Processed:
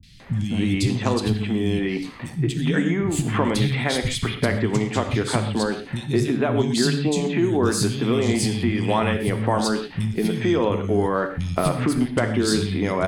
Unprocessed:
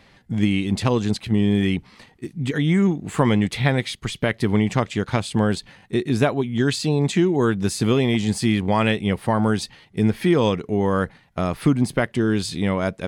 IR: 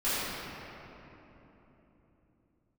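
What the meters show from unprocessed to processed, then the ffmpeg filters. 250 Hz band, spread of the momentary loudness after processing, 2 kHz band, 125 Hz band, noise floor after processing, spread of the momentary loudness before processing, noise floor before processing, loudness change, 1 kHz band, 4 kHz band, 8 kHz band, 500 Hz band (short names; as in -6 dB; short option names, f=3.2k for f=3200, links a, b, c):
-1.5 dB, 5 LU, -0.5 dB, -1.0 dB, -36 dBFS, 7 LU, -54 dBFS, -1.0 dB, 0.0 dB, +1.0 dB, +3.5 dB, 0.0 dB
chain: -filter_complex "[0:a]acompressor=threshold=-25dB:ratio=6,acrossover=split=190|2900[a][b][c];[c]adelay=30[d];[b]adelay=200[e];[a][e][d]amix=inputs=3:normalize=0,asplit=2[f][g];[1:a]atrim=start_sample=2205,atrim=end_sample=6174[h];[g][h]afir=irnorm=-1:irlink=0,volume=-13.5dB[i];[f][i]amix=inputs=2:normalize=0,volume=7.5dB"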